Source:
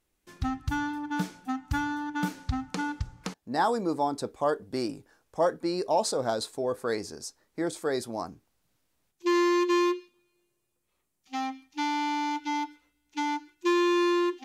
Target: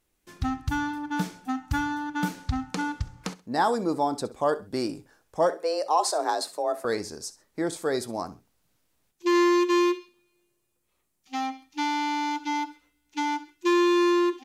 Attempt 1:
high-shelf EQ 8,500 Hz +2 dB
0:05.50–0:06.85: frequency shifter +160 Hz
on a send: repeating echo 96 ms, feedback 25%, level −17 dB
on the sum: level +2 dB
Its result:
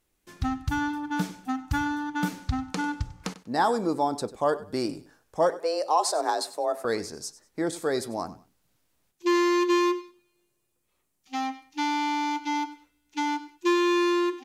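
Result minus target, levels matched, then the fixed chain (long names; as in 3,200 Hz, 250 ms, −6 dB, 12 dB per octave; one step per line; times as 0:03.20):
echo 30 ms late
high-shelf EQ 8,500 Hz +2 dB
0:05.50–0:06.85: frequency shifter +160 Hz
on a send: repeating echo 66 ms, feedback 25%, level −17 dB
on the sum: level +2 dB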